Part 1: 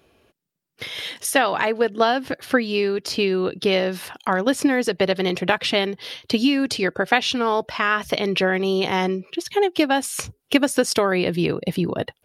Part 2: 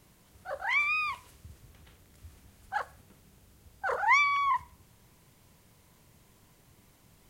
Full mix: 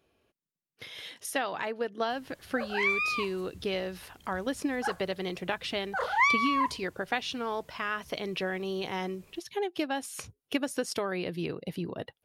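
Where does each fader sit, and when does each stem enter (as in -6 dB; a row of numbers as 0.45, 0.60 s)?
-12.5, -0.5 dB; 0.00, 2.10 s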